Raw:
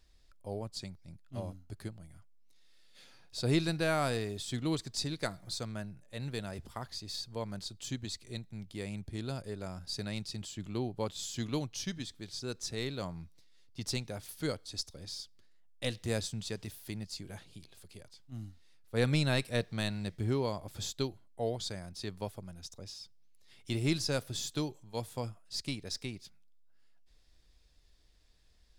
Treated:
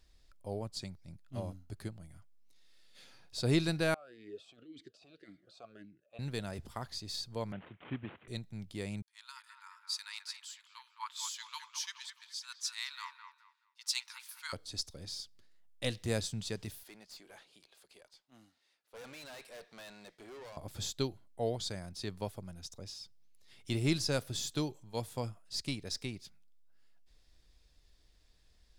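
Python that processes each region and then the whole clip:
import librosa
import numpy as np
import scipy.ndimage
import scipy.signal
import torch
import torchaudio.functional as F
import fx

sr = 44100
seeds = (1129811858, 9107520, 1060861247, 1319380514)

y = fx.chain(x, sr, fx.over_compress(threshold_db=-39.0, ratio=-1.0),
    fx.vowel_sweep(vowels='a-i', hz=1.8), at=(3.94, 6.19))
y = fx.chain(y, sr, fx.cvsd(bps=16000),
    fx.highpass(hz=120.0, slope=12), at=(7.52, 8.28))
y = fx.chain(y, sr, fx.brickwall_highpass(low_hz=870.0),
    fx.echo_wet_lowpass(ms=212, feedback_pct=44, hz=2600.0, wet_db=-5),
    fx.band_widen(depth_pct=70), at=(9.02, 14.53))
y = fx.chain(y, sr, fx.highpass(hz=500.0, slope=12),
    fx.high_shelf(hz=5900.0, db=-7.0),
    fx.tube_stage(drive_db=47.0, bias=0.35), at=(16.83, 20.57))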